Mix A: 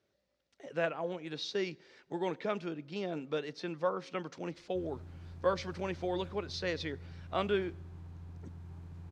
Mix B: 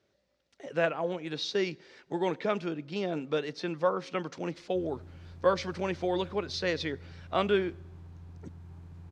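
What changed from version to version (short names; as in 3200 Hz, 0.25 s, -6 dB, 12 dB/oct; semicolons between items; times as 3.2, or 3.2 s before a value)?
speech +5.0 dB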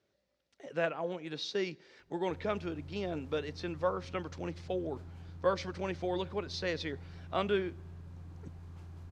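speech -4.5 dB; background: entry -2.45 s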